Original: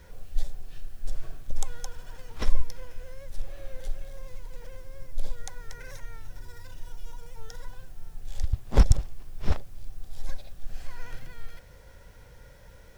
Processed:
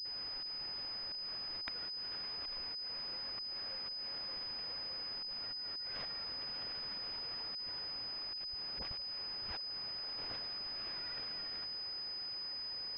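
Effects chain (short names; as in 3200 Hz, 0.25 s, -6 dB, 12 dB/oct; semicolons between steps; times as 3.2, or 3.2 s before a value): differentiator; auto swell 0.196 s; dispersion highs, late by 53 ms, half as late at 490 Hz; phaser 1.7 Hz, delay 2.8 ms, feedback 59%; pulse-width modulation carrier 5000 Hz; gain +7 dB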